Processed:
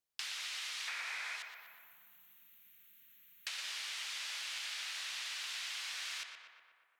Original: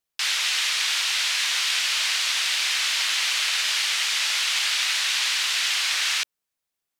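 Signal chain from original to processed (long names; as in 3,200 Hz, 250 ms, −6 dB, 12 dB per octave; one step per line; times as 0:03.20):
0:00.88–0:01.36: gain on a spectral selection 420–2,600 Hz +12 dB
0:01.42–0:03.47: inverse Chebyshev band-stop filter 360–9,800 Hz, stop band 40 dB
downward compressor 12 to 1, threshold −32 dBFS, peak gain reduction 18 dB
tape delay 119 ms, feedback 74%, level −5 dB, low-pass 2,700 Hz
level −7.5 dB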